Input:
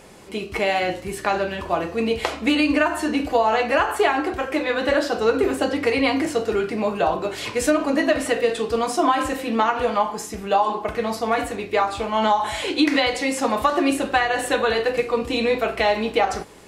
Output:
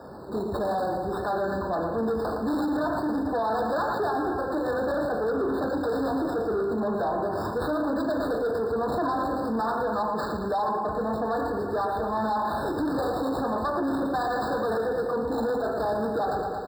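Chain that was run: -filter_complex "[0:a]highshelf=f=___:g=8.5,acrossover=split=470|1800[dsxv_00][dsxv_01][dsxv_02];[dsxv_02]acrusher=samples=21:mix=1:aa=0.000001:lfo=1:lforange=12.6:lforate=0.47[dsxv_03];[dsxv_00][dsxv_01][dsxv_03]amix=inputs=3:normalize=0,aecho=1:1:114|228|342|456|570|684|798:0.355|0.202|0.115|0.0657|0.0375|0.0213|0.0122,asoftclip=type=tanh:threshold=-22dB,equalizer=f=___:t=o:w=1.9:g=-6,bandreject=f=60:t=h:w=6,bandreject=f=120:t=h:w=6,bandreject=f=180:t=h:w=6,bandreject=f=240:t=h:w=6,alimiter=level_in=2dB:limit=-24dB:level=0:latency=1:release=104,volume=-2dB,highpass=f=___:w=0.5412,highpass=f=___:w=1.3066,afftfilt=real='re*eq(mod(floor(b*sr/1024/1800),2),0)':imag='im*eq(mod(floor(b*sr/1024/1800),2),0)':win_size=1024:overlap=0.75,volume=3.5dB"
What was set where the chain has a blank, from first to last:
8.3k, 11k, 46, 46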